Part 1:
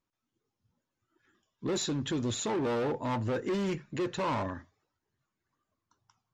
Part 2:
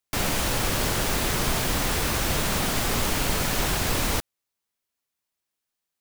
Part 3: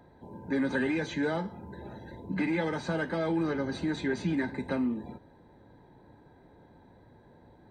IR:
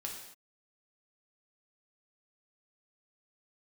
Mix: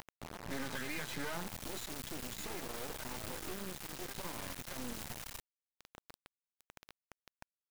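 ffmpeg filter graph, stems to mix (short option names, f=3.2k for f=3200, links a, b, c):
-filter_complex "[0:a]acompressor=threshold=-40dB:ratio=2,volume=-5dB,asplit=2[a][b];[1:a]alimiter=limit=-21dB:level=0:latency=1:release=21,adelay=1200,volume=-15.5dB[c];[2:a]volume=2dB[d];[b]apad=whole_len=339821[e];[d][e]sidechaincompress=threshold=-57dB:ratio=8:attack=16:release=604[f];[c][f]amix=inputs=2:normalize=0,equalizer=f=350:w=0.99:g=-10.5,alimiter=level_in=3.5dB:limit=-24dB:level=0:latency=1:release=218,volume=-3.5dB,volume=0dB[g];[a][g]amix=inputs=2:normalize=0,acompressor=mode=upward:threshold=-41dB:ratio=2.5,acrusher=bits=4:dc=4:mix=0:aa=0.000001"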